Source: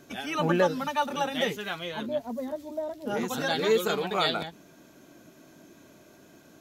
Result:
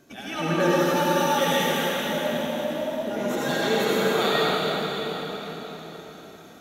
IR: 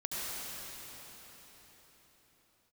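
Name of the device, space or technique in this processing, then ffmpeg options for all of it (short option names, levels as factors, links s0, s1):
cathedral: -filter_complex "[0:a]asettb=1/sr,asplit=3[s0][s1][s2];[s0]atrim=end=0.604[s3];[s1]atrim=start=0.6:end=1.72,asetpts=PTS-STARTPTS,afade=t=in:d=0.004:c=qsin,afade=t=out:st=1.116:d=0.004:c=qsin,aemphasis=mode=production:type=50kf[s4];[s2]atrim=start=1.716[s5];[s3][s4]acrossfade=d=0.004:c1=hsin:c2=qsin[s6];[s6][s5]acrossfade=d=0.004:c1=qsin:c2=hsin[s7];[1:a]atrim=start_sample=2205[s8];[s7][s8]afir=irnorm=-1:irlink=0"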